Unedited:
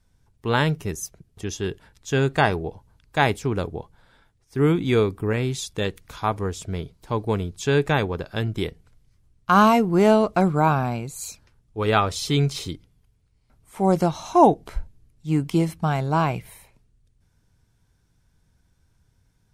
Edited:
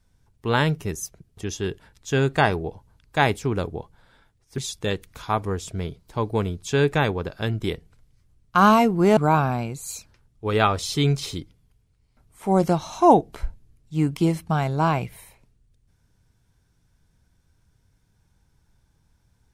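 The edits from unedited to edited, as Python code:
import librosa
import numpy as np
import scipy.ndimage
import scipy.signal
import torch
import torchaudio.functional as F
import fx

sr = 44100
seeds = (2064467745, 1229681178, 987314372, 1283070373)

y = fx.edit(x, sr, fx.cut(start_s=4.58, length_s=0.94),
    fx.cut(start_s=10.11, length_s=0.39), tone=tone)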